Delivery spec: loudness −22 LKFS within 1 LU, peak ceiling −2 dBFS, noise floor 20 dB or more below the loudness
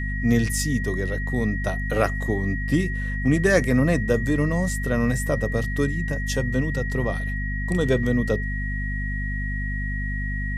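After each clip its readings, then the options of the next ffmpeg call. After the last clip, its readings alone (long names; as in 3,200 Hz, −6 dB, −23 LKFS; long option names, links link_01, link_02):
mains hum 50 Hz; hum harmonics up to 250 Hz; level of the hum −25 dBFS; interfering tone 1,900 Hz; level of the tone −31 dBFS; integrated loudness −24.0 LKFS; sample peak −6.0 dBFS; target loudness −22.0 LKFS
→ -af "bandreject=frequency=50:width_type=h:width=4,bandreject=frequency=100:width_type=h:width=4,bandreject=frequency=150:width_type=h:width=4,bandreject=frequency=200:width_type=h:width=4,bandreject=frequency=250:width_type=h:width=4"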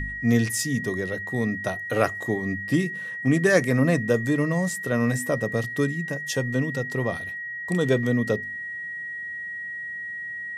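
mains hum none found; interfering tone 1,900 Hz; level of the tone −31 dBFS
→ -af "bandreject=frequency=1900:width=30"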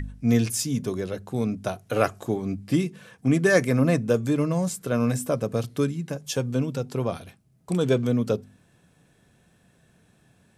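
interfering tone none found; integrated loudness −25.5 LKFS; sample peak −6.0 dBFS; target loudness −22.0 LKFS
→ -af "volume=3.5dB"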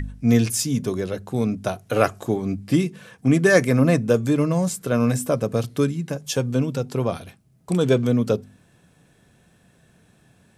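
integrated loudness −22.0 LKFS; sample peak −2.5 dBFS; background noise floor −58 dBFS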